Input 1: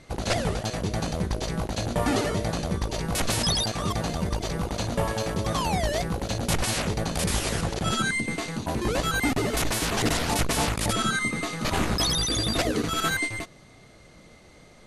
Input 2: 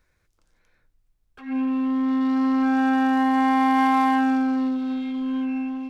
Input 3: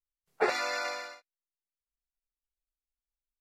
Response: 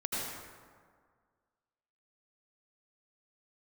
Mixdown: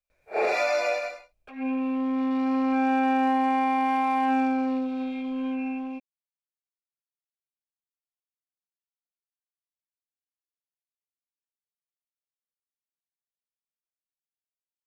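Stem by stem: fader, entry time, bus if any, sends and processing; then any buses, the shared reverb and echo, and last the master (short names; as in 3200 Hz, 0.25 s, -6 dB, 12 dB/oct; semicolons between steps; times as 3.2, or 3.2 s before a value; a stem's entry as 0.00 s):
off
-5.5 dB, 0.10 s, no send, dry
0.0 dB, 0.00 s, no send, phase scrambler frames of 0.2 s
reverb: off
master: small resonant body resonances 610/2400 Hz, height 16 dB, ringing for 20 ms; limiter -16 dBFS, peak gain reduction 6 dB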